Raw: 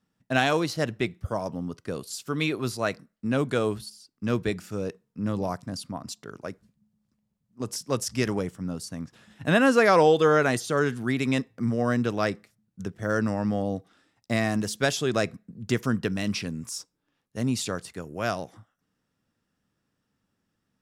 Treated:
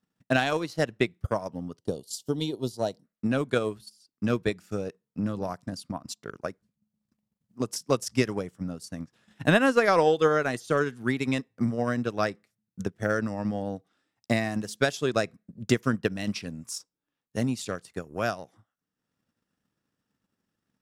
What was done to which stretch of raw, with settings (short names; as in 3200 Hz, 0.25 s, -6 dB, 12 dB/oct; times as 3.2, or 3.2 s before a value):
1.78–3.04 spectral gain 980–2800 Hz -17 dB
whole clip: low shelf 85 Hz -6.5 dB; transient shaper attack +9 dB, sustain -7 dB; maximiser +4.5 dB; gain -8 dB